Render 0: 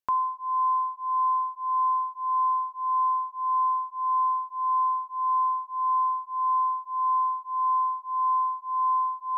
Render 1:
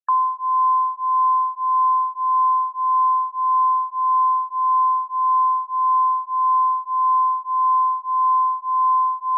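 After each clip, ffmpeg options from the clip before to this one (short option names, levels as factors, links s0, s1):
-filter_complex "[0:a]asplit=2[s0][s1];[s1]alimiter=level_in=2.51:limit=0.0631:level=0:latency=1:release=474,volume=0.398,volume=1.41[s2];[s0][s2]amix=inputs=2:normalize=0,afftfilt=real='re*gte(hypot(re,im),0.0141)':imag='im*gte(hypot(re,im),0.0141)':win_size=1024:overlap=0.75,highpass=f=920:w=0.5412,highpass=f=920:w=1.3066,volume=1.88"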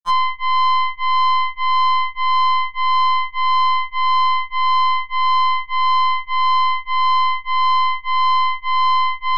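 -af "acompressor=threshold=0.0355:ratio=2,aeval=exprs='0.141*(cos(1*acos(clip(val(0)/0.141,-1,1)))-cos(1*PI/2))+0.0282*(cos(3*acos(clip(val(0)/0.141,-1,1)))-cos(3*PI/2))+0.0158*(cos(6*acos(clip(val(0)/0.141,-1,1)))-cos(6*PI/2))+0.00794*(cos(7*acos(clip(val(0)/0.141,-1,1)))-cos(7*PI/2))':c=same,afftfilt=real='re*2.83*eq(mod(b,8),0)':imag='im*2.83*eq(mod(b,8),0)':win_size=2048:overlap=0.75,volume=1.68"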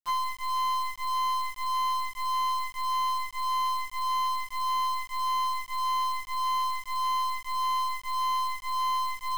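-af "aeval=exprs='(tanh(4.47*val(0)+0.3)-tanh(0.3))/4.47':c=same,acrusher=bits=5:mix=0:aa=0.000001,volume=0.422"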